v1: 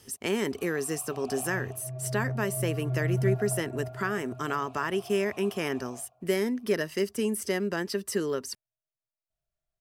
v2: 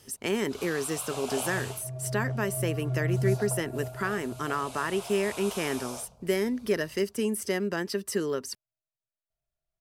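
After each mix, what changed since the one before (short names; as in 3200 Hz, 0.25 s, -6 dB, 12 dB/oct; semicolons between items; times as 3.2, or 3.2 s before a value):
first sound: remove vowel filter a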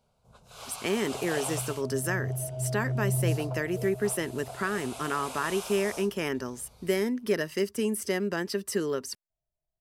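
speech: entry +0.60 s; second sound: add brick-wall FIR low-pass 1100 Hz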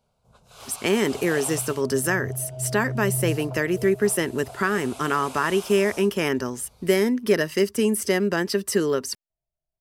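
speech +7.0 dB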